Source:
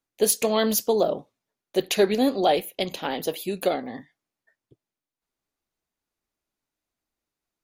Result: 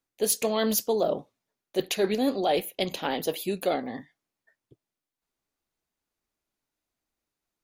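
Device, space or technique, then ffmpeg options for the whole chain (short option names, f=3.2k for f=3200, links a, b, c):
compression on the reversed sound: -af "areverse,acompressor=threshold=-21dB:ratio=6,areverse"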